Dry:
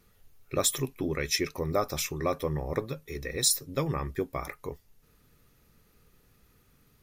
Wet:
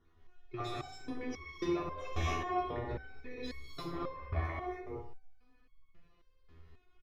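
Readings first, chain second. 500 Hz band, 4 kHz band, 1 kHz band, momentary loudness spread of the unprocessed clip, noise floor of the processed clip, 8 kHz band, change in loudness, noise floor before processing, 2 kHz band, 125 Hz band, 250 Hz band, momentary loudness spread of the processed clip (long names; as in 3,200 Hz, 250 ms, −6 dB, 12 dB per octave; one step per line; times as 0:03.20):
−9.0 dB, −15.5 dB, −2.0 dB, 12 LU, −68 dBFS, −27.0 dB, −9.5 dB, −64 dBFS, −6.5 dB, −6.5 dB, −5.5 dB, 10 LU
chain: time-frequency cells dropped at random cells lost 28%
comb filter 2.8 ms, depth 64%
soft clipping −24 dBFS, distortion −12 dB
high-frequency loss of the air 260 metres
repeating echo 60 ms, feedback 46%, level −8 dB
reverb whose tail is shaped and stops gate 300 ms rising, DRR −6 dB
step-sequenced resonator 3.7 Hz 82–1,100 Hz
level +4 dB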